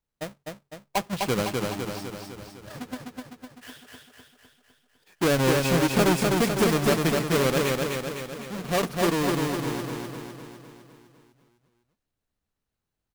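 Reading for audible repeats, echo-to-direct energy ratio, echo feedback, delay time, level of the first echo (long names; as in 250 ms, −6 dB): 7, −1.5 dB, 57%, 253 ms, −3.0 dB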